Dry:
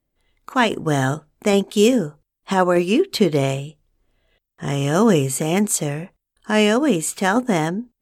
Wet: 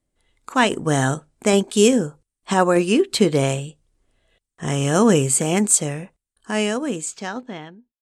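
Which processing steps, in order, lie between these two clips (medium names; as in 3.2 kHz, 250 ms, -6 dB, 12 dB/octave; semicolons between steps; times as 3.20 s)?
fade out at the end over 2.64 s; low-pass sweep 9 kHz -> 3.2 kHz, 6.91–7.62 s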